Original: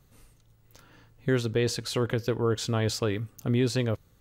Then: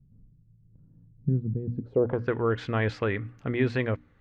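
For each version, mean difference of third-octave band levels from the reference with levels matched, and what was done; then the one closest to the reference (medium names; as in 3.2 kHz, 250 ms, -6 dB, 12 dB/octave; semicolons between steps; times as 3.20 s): 8.5 dB: hum notches 60/120/180/240/300 Hz; low-pass sweep 180 Hz -> 2 kHz, 1.70–2.34 s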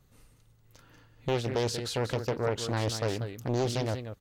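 5.5 dB: delay 188 ms -9.5 dB; loudspeaker Doppler distortion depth 0.89 ms; trim -2.5 dB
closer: second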